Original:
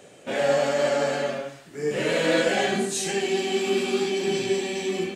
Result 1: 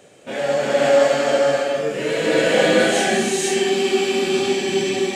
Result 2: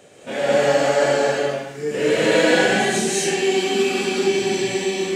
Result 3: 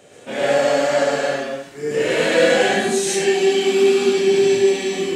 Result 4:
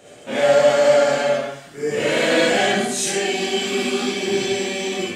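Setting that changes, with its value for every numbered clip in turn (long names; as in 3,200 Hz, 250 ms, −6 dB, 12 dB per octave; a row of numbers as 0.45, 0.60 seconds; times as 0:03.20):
reverb whose tail is shaped and stops, gate: 530, 260, 160, 90 milliseconds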